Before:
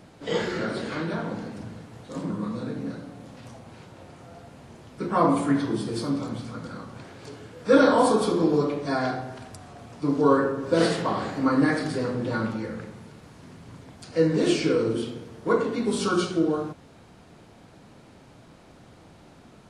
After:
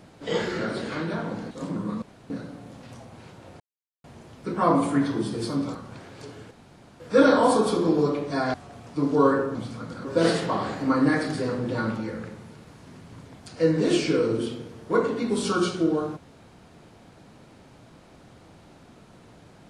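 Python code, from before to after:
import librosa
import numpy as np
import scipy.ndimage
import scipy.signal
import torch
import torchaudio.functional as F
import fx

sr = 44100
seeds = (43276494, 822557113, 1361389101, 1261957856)

y = fx.edit(x, sr, fx.cut(start_s=1.51, length_s=0.54),
    fx.room_tone_fill(start_s=2.56, length_s=0.28),
    fx.silence(start_s=4.14, length_s=0.44),
    fx.move(start_s=6.29, length_s=0.5, to_s=10.61),
    fx.insert_room_tone(at_s=7.55, length_s=0.49),
    fx.cut(start_s=9.09, length_s=0.51), tone=tone)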